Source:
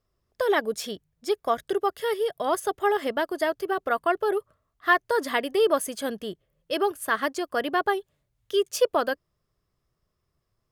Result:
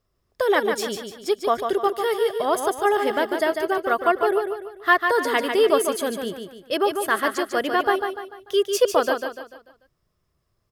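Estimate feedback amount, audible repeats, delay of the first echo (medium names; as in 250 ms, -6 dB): 41%, 4, 147 ms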